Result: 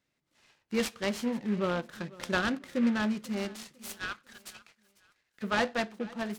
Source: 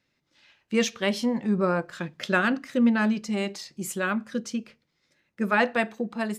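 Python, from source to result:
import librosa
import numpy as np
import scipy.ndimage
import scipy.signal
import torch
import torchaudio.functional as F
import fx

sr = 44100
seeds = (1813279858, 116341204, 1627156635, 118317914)

y = fx.cheby2_highpass(x, sr, hz=380.0, order=4, stop_db=60, at=(3.73, 5.42), fade=0.02)
y = fx.echo_feedback(y, sr, ms=496, feedback_pct=35, wet_db=-21.0)
y = fx.noise_mod_delay(y, sr, seeds[0], noise_hz=1700.0, depth_ms=0.046)
y = y * librosa.db_to_amplitude(-6.0)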